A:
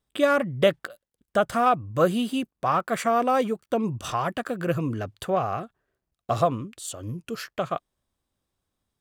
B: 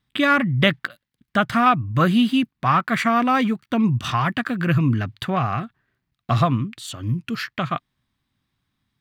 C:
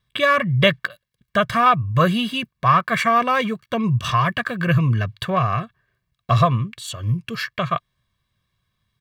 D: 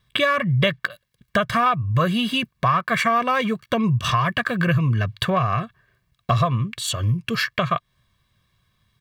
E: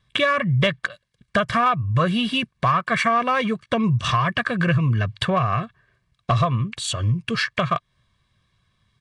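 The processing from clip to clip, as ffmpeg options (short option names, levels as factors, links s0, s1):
-af "equalizer=f=125:t=o:w=1:g=11,equalizer=f=250:t=o:w=1:g=8,equalizer=f=500:t=o:w=1:g=-9,equalizer=f=1000:t=o:w=1:g=4,equalizer=f=2000:t=o:w=1:g=10,equalizer=f=4000:t=o:w=1:g=7,equalizer=f=8000:t=o:w=1:g=-5"
-af "aecho=1:1:1.8:0.77"
-af "acompressor=threshold=0.0501:ratio=3,volume=2.11"
-af "aeval=exprs='clip(val(0),-1,0.282)':c=same" -ar 22050 -c:a nellymoser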